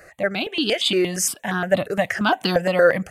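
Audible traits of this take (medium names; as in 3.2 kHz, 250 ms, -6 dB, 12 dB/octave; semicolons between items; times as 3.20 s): random-step tremolo; notches that jump at a steady rate 8.6 Hz 900–2100 Hz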